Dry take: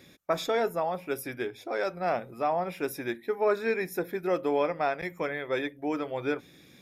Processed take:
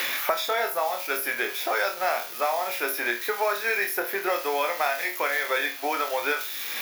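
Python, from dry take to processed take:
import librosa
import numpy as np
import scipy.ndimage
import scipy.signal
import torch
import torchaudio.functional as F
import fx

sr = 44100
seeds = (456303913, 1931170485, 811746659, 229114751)

p1 = x + 0.5 * 10.0 ** (-32.0 / 20.0) * np.diff(np.sign(x), prepend=np.sign(x[:1]))
p2 = scipy.signal.sosfilt(scipy.signal.butter(2, 840.0, 'highpass', fs=sr, output='sos'), p1)
p3 = fx.peak_eq(p2, sr, hz=8300.0, db=-12.0, octaves=0.47)
p4 = p3 + fx.room_flutter(p3, sr, wall_m=4.3, rt60_s=0.28, dry=0)
p5 = fx.band_squash(p4, sr, depth_pct=100)
y = F.gain(torch.from_numpy(p5), 6.5).numpy()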